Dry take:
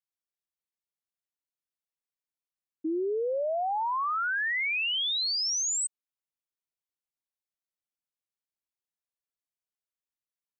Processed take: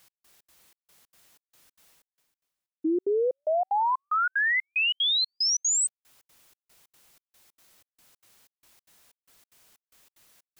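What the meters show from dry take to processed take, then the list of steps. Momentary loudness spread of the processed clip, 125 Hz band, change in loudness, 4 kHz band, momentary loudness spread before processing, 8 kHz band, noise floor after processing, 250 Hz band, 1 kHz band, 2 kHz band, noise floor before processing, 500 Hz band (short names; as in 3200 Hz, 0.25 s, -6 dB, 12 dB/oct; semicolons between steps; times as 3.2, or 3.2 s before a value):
6 LU, n/a, +3.0 dB, +3.0 dB, 6 LU, +3.5 dB, under -85 dBFS, +4.5 dB, +3.0 dB, +3.0 dB, under -85 dBFS, +3.0 dB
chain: reverse; upward compressor, threshold -42 dBFS; reverse; step gate "x..xx.xx" 186 bpm -60 dB; gain +5 dB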